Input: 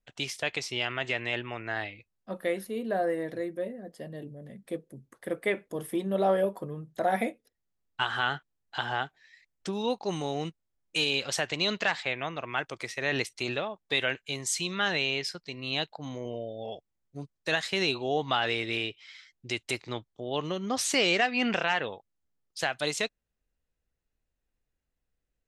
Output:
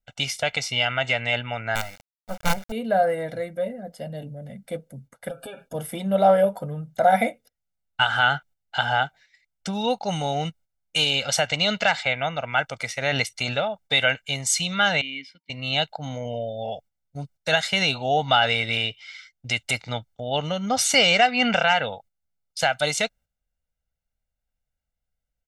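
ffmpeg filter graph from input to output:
ffmpeg -i in.wav -filter_complex "[0:a]asettb=1/sr,asplit=3[link_01][link_02][link_03];[link_01]atrim=end=1.754[link_04];[link_02]atrim=start=1.75:end=2.72,asetpts=PTS-STARTPTS,afade=type=in:duration=0.004:curve=qsin,afade=type=out:start_time=0.966:duration=0.004:curve=qsin,lowpass=1700,acrusher=bits=5:dc=4:mix=0:aa=0.000001,aeval=exprs='abs(val(0))':channel_layout=same[link_05];[link_03]atrim=start=2.716[link_06];[link_04][link_05]acrossfade=duration=0.004:curve1=hsin:curve2=qsin[link_07];[link_07][link_06]acrossfade=duration=0.004:curve1=qsin:curve2=hsin,asettb=1/sr,asplit=3[link_08][link_09][link_10];[link_08]atrim=end=5.294[link_11];[link_09]atrim=start=5.29:end=5.74,asetpts=PTS-STARTPTS,afade=type=in:duration=0.004:curve=qsin,afade=type=out:start_time=0.446:duration=0.004:curve=qsin,asuperstop=centerf=2000:order=20:qfactor=3.6,acompressor=threshold=-38dB:ratio=8:attack=3.2:release=140:knee=1:detection=peak,aecho=1:1:7.4:0.62,atrim=end_sample=19845[link_12];[link_10]atrim=start=5.736[link_13];[link_11][link_12]acrossfade=duration=0.004:curve1=hsin:curve2=qsin[link_14];[link_14][link_13]acrossfade=duration=0.004:curve1=qsin:curve2=hsin,asettb=1/sr,asplit=3[link_15][link_16][link_17];[link_15]atrim=end=15.014[link_18];[link_16]atrim=start=15.01:end=15.5,asetpts=PTS-STARTPTS,afade=type=in:duration=0.004:curve=qsin,afade=type=out:start_time=0.486:duration=0.004:curve=qsin,aeval=exprs='val(0)+0.00316*sin(2*PI*930*n/s)':channel_layout=same,asplit=3[link_19][link_20][link_21];[link_19]bandpass=frequency=270:width_type=q:width=8,volume=0dB[link_22];[link_20]bandpass=frequency=2290:width_type=q:width=8,volume=-6dB[link_23];[link_21]bandpass=frequency=3010:width_type=q:width=8,volume=-9dB[link_24];[link_22][link_23][link_24]amix=inputs=3:normalize=0[link_25];[link_17]atrim=start=15.496[link_26];[link_18][link_25]acrossfade=duration=0.004:curve1=hsin:curve2=qsin[link_27];[link_27][link_26]acrossfade=duration=0.004:curve1=qsin:curve2=hsin,agate=range=-10dB:threshold=-54dB:ratio=16:detection=peak,aecho=1:1:1.4:0.85,volume=5dB" out.wav

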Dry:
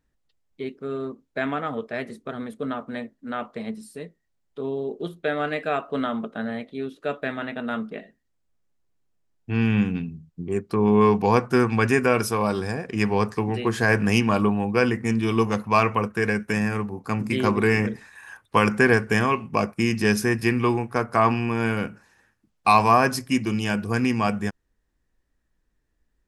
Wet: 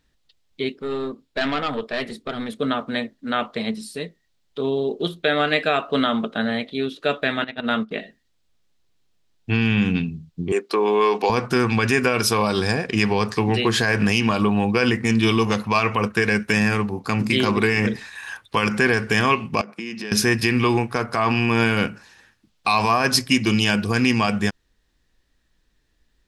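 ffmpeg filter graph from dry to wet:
ffmpeg -i in.wav -filter_complex "[0:a]asettb=1/sr,asplit=3[link_01][link_02][link_03];[link_01]atrim=end=0.724[link_04];[link_02]atrim=start=0.72:end=2.49,asetpts=PTS-STARTPTS,afade=type=in:duration=0.004:curve=qsin,afade=type=out:start_time=1.766:duration=0.004:curve=qsin,aeval=exprs='(tanh(14.1*val(0)+0.4)-tanh(0.4))/14.1':channel_layout=same,bandreject=frequency=6100:width=12[link_05];[link_03]atrim=start=2.486[link_06];[link_04][link_05]acrossfade=duration=0.004:curve1=hsin:curve2=qsin[link_07];[link_07][link_06]acrossfade=duration=0.004:curve1=qsin:curve2=hsin,asettb=1/sr,asplit=3[link_08][link_09][link_10];[link_08]atrim=end=7.444[link_11];[link_09]atrim=start=7.44:end=7.91,asetpts=PTS-STARTPTS,afade=type=in:duration=0.004:curve=qsin,afade=type=out:start_time=0.466:duration=0.004:curve=qsin,agate=range=-14dB:threshold=-31dB:ratio=16:release=100:detection=peak,highshelf=frequency=8900:gain=-7[link_12];[link_10]atrim=start=7.906[link_13];[link_11][link_12]acrossfade=duration=0.004:curve1=hsin:curve2=qsin[link_14];[link_14][link_13]acrossfade=duration=0.004:curve1=qsin:curve2=hsin,asettb=1/sr,asplit=3[link_15][link_16][link_17];[link_15]atrim=end=10.524[link_18];[link_16]atrim=start=10.52:end=11.3,asetpts=PTS-STARTPTS,afade=type=in:duration=0.004:curve=qsin,afade=type=out:start_time=0.776:duration=0.004:curve=qsin,highpass=frequency=320:width=0.5412,highpass=frequency=320:width=1.3066,acompressor=threshold=-21dB:ratio=2.5:attack=3.2:release=140:knee=1:detection=peak[link_19];[link_17]atrim=start=11.296[link_20];[link_18][link_19]acrossfade=duration=0.004:curve1=hsin:curve2=qsin[link_21];[link_21][link_20]acrossfade=duration=0.004:curve1=qsin:curve2=hsin,asettb=1/sr,asplit=3[link_22][link_23][link_24];[link_22]atrim=end=19.614[link_25];[link_23]atrim=start=19.61:end=20.12,asetpts=PTS-STARTPTS,afade=type=in:duration=0.004:curve=qsin,afade=type=out:start_time=0.506:duration=0.004:curve=qsin,highpass=frequency=180:width=0.5412,highpass=frequency=180:width=1.3066,aemphasis=mode=reproduction:type=50fm,acompressor=threshold=-36dB:ratio=6:attack=3.2:release=140:knee=1:detection=peak[link_26];[link_24]atrim=start=20.116[link_27];[link_25][link_26]acrossfade=duration=0.004:curve1=hsin:curve2=qsin[link_28];[link_28][link_27]acrossfade=duration=0.004:curve1=qsin:curve2=hsin,alimiter=limit=-15.5dB:level=0:latency=1:release=85,equalizer=frequency=3800:width_type=o:width=1.4:gain=11,volume=5.5dB" out.wav

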